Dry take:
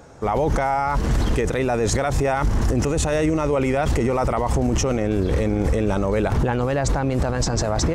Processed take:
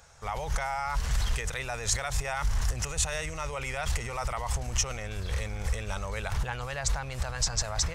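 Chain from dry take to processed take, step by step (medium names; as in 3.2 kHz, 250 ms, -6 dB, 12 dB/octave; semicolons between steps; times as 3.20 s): amplifier tone stack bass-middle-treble 10-0-10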